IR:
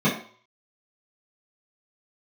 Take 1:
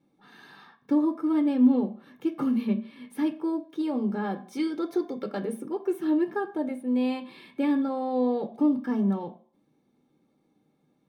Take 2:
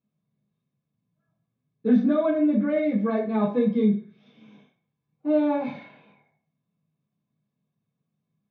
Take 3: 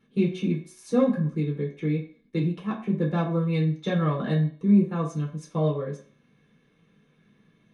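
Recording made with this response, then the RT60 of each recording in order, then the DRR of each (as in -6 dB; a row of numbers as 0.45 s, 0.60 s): 2; 0.50 s, 0.50 s, 0.50 s; 6.0 dB, -11.0 dB, -4.0 dB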